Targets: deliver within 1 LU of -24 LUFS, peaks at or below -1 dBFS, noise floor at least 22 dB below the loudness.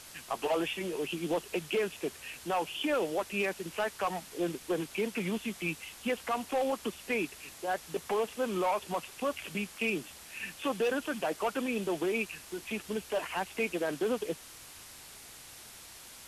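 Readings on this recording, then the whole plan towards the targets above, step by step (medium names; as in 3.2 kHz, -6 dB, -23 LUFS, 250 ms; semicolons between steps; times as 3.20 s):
clipped samples 0.6%; clipping level -24.0 dBFS; noise floor -50 dBFS; noise floor target -56 dBFS; loudness -34.0 LUFS; peak level -24.0 dBFS; loudness target -24.0 LUFS
-> clip repair -24 dBFS; noise print and reduce 6 dB; trim +10 dB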